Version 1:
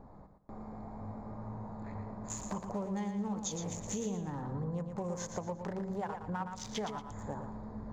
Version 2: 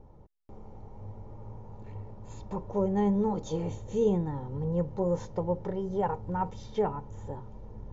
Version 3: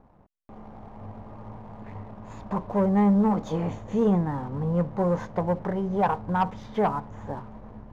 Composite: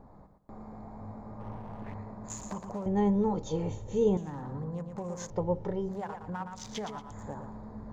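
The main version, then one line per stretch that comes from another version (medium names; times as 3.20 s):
1
1.40–1.94 s: from 3
2.86–4.17 s: from 2
5.30–5.89 s: from 2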